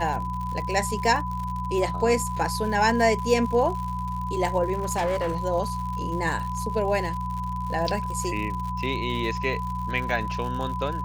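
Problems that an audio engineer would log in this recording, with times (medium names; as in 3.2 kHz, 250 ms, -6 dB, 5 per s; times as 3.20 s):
crackle 100 per s -32 dBFS
hum 60 Hz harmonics 3 -32 dBFS
whine 1 kHz -30 dBFS
4.73–5.42 s: clipped -21.5 dBFS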